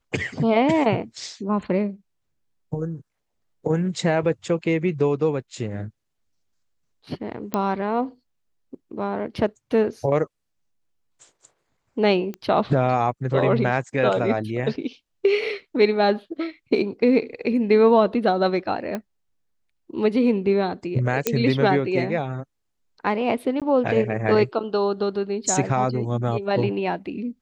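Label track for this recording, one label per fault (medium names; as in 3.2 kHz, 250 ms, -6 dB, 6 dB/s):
7.540000	7.540000	pop -10 dBFS
12.340000	12.340000	pop -20 dBFS
18.950000	18.950000	pop -15 dBFS
21.270000	21.270000	pop -4 dBFS
23.600000	23.620000	dropout 17 ms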